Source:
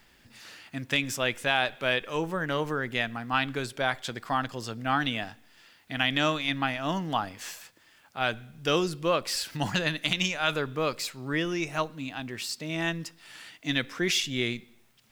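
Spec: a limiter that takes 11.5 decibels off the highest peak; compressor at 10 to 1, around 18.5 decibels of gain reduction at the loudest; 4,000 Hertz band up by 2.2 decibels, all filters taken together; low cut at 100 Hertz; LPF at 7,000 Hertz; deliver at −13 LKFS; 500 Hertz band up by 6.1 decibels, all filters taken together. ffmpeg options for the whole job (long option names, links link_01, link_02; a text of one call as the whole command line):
ffmpeg -i in.wav -af "highpass=100,lowpass=7000,equalizer=frequency=500:width_type=o:gain=7.5,equalizer=frequency=4000:width_type=o:gain=3,acompressor=threshold=-35dB:ratio=10,volume=29dB,alimiter=limit=-1dB:level=0:latency=1" out.wav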